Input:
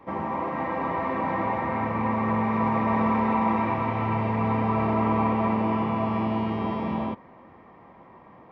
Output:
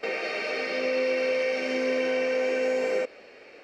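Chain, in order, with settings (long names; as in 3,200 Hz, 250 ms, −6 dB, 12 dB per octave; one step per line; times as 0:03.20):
parametric band 64 Hz −9.5 dB 1.3 octaves
wrong playback speed 33 rpm record played at 78 rpm
downward compressor, threshold −27 dBFS, peak gain reduction 7 dB
octave-band graphic EQ 250/500/1,000 Hz +3/+9/−9 dB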